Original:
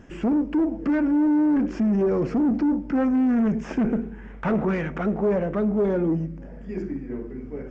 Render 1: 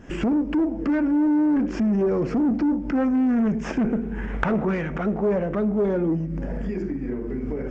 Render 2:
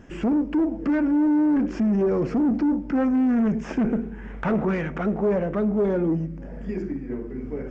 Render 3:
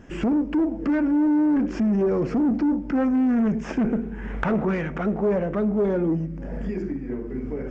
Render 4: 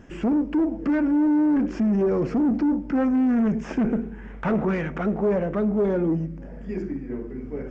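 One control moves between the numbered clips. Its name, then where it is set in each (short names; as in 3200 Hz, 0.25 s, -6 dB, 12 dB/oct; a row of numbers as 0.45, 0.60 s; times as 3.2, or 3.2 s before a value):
recorder AGC, rising by: 91, 13, 33, 5.2 dB/s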